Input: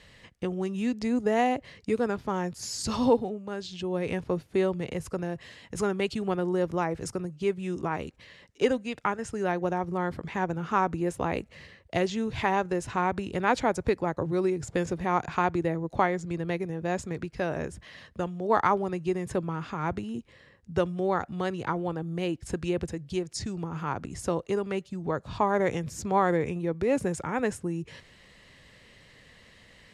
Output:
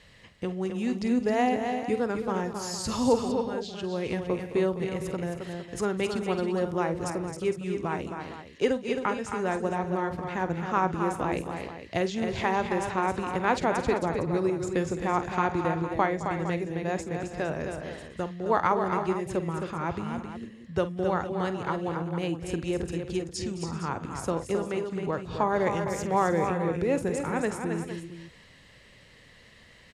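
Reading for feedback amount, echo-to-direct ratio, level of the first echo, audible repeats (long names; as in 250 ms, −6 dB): repeats not evenly spaced, −4.0 dB, −13.5 dB, 6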